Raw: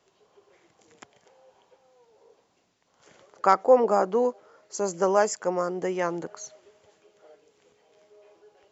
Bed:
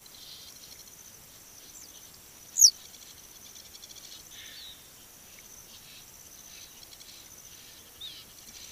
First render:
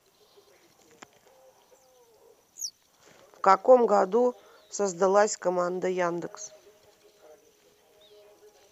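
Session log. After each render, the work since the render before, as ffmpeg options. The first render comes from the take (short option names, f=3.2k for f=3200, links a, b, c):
-filter_complex "[1:a]volume=-18dB[a];[0:a][a]amix=inputs=2:normalize=0"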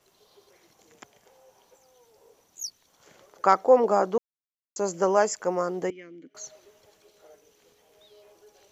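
-filter_complex "[0:a]asettb=1/sr,asplit=3[a][b][c];[a]atrim=end=5.904[d];[b]atrim=start=5.9:end=6.35,asetpts=PTS-STARTPTS,afade=t=in:d=0.004:c=qsin,afade=t=out:st=0.446:d=0.004:c=qsin,asplit=3[e][f][g];[e]bandpass=f=270:t=q:w=8,volume=0dB[h];[f]bandpass=f=2.29k:t=q:w=8,volume=-6dB[i];[g]bandpass=f=3.01k:t=q:w=8,volume=-9dB[j];[h][i][j]amix=inputs=3:normalize=0[k];[c]atrim=start=6.346[l];[d][k]acrossfade=d=0.004:c1=hsin:c2=qsin[m];[m][l]acrossfade=d=0.004:c1=qsin:c2=hsin,asplit=3[n][o][p];[n]atrim=end=4.18,asetpts=PTS-STARTPTS,afade=t=out:st=4.176:d=0.004:c=hsin[q];[o]atrim=start=4.18:end=4.76,asetpts=PTS-STARTPTS,volume=0[r];[p]atrim=start=4.76,asetpts=PTS-STARTPTS,afade=t=in:d=0.004:c=hsin[s];[q][r][s]concat=n=3:v=0:a=1"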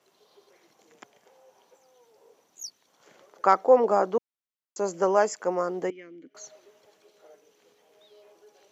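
-af "highpass=190,highshelf=f=5.3k:g=-7"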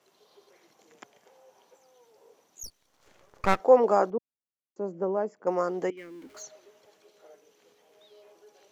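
-filter_complex "[0:a]asettb=1/sr,asplit=3[a][b][c];[a]atrim=end=2.634[d];[b]atrim=start=2.63:end=3.6,asetpts=PTS-STARTPTS,afade=t=in:d=0.004:c=qsin,afade=t=out:st=0.966:d=0.004:c=qsin,aeval=exprs='max(val(0),0)':c=same[e];[c]atrim=start=3.596[f];[d][e]acrossfade=d=0.004:c1=hsin:c2=qsin[g];[g][f]acrossfade=d=0.004:c1=qsin:c2=hsin,asettb=1/sr,asplit=3[h][i][j];[h]atrim=end=4.104[k];[i]atrim=start=4.1:end=5.47,asetpts=PTS-STARTPTS,afade=t=in:d=0.004:c=qsin,afade=t=out:st=1.366:d=0.004:c=qsin,bandpass=f=170:t=q:w=0.64[l];[j]atrim=start=5.466[m];[k][l]acrossfade=d=0.004:c1=hsin:c2=qsin[n];[n][m]acrossfade=d=0.004:c1=qsin:c2=hsin,asettb=1/sr,asplit=3[o][p][q];[o]atrim=end=5.974[r];[p]atrim=start=5.97:end=6.43,asetpts=PTS-STARTPTS,afade=t=in:d=0.004:c=qsin,afade=t=out:st=0.456:d=0.004:c=qsin,aeval=exprs='val(0)+0.5*0.00282*sgn(val(0))':c=same[s];[q]atrim=start=6.426[t];[r][s]acrossfade=d=0.004:c1=hsin:c2=qsin[u];[u][t]acrossfade=d=0.004:c1=qsin:c2=hsin"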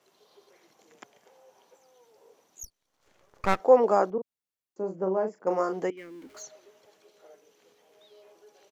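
-filter_complex "[0:a]asplit=3[a][b][c];[a]afade=t=out:st=4.17:d=0.02[d];[b]asplit=2[e][f];[f]adelay=37,volume=-7dB[g];[e][g]amix=inputs=2:normalize=0,afade=t=in:st=4.17:d=0.02,afade=t=out:st=5.79:d=0.02[h];[c]afade=t=in:st=5.79:d=0.02[i];[d][h][i]amix=inputs=3:normalize=0,asplit=2[j][k];[j]atrim=end=2.65,asetpts=PTS-STARTPTS,afade=t=out:st=2.646:d=0.004:c=hsin:silence=0.188365[l];[k]atrim=start=2.65,asetpts=PTS-STARTPTS,afade=t=in:d=1.02:silence=0.188365[m];[l][m]concat=n=2:v=0:a=1"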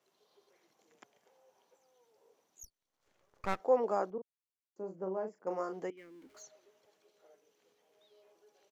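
-af "volume=-10dB"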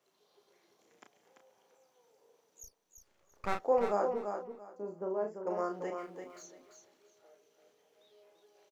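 -filter_complex "[0:a]asplit=2[a][b];[b]adelay=34,volume=-5.5dB[c];[a][c]amix=inputs=2:normalize=0,asplit=2[d][e];[e]aecho=0:1:340|680|1020:0.473|0.0994|0.0209[f];[d][f]amix=inputs=2:normalize=0"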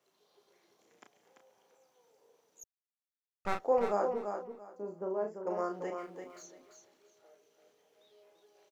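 -filter_complex "[0:a]asplit=3[a][b][c];[a]atrim=end=2.64,asetpts=PTS-STARTPTS,afade=t=out:st=2.636:d=0.004:c=hsin[d];[b]atrim=start=2.64:end=3.45,asetpts=PTS-STARTPTS,volume=0[e];[c]atrim=start=3.45,asetpts=PTS-STARTPTS,afade=t=in:d=0.004:c=hsin[f];[d][e][f]concat=n=3:v=0:a=1"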